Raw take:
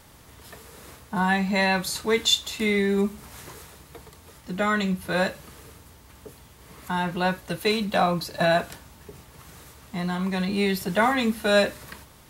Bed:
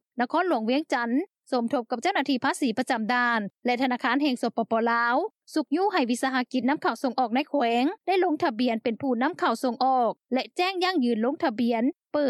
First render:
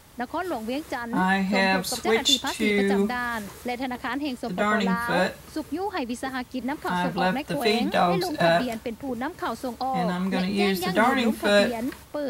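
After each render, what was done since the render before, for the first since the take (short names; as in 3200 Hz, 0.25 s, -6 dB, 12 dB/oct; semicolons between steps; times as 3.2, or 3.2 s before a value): add bed -5 dB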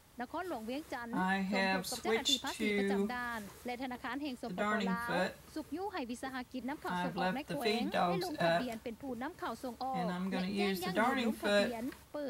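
gain -11 dB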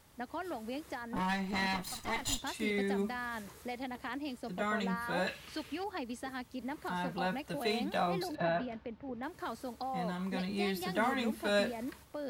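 1.16–2.39 minimum comb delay 1 ms; 5.27–5.84 bell 2800 Hz +15 dB 1.6 oct; 8.35–9.23 air absorption 270 m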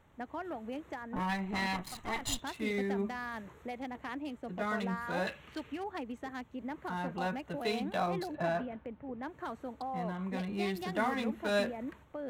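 Wiener smoothing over 9 samples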